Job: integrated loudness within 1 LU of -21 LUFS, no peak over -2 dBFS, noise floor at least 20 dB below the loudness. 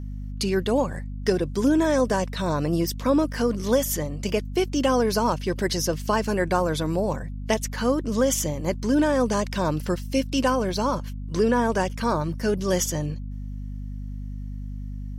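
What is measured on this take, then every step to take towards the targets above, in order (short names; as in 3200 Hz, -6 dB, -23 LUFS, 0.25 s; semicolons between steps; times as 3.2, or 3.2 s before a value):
hum 50 Hz; harmonics up to 250 Hz; hum level -30 dBFS; loudness -24.5 LUFS; peak -9.0 dBFS; loudness target -21.0 LUFS
-> de-hum 50 Hz, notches 5; gain +3.5 dB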